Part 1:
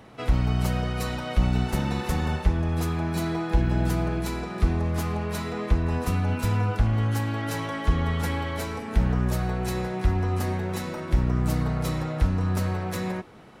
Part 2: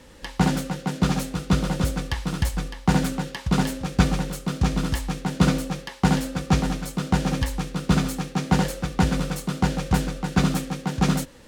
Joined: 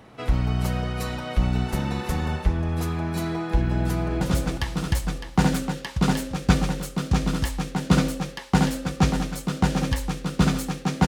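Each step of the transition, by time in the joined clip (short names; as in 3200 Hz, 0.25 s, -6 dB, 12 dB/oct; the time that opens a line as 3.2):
part 1
3.74–4.21 echo throw 0.36 s, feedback 45%, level -7 dB
4.21 switch to part 2 from 1.71 s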